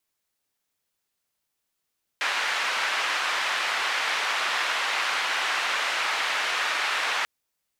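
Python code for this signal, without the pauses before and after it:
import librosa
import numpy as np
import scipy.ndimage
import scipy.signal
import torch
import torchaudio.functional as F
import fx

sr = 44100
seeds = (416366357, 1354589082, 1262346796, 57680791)

y = fx.band_noise(sr, seeds[0], length_s=5.04, low_hz=960.0, high_hz=2300.0, level_db=-26.5)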